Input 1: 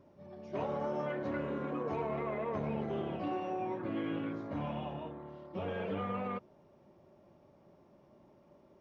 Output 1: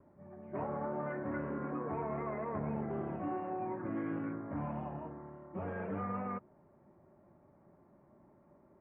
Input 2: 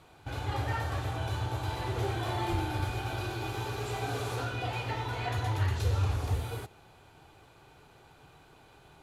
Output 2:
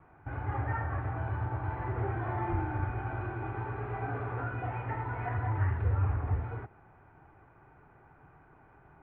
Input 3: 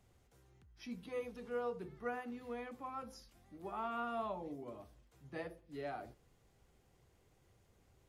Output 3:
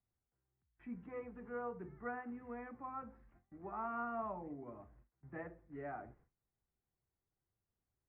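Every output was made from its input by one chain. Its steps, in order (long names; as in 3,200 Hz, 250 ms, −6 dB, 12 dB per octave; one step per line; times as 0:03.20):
noise gate with hold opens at −55 dBFS
Butterworth low-pass 2,000 Hz 36 dB per octave
parametric band 500 Hz −5 dB 0.69 octaves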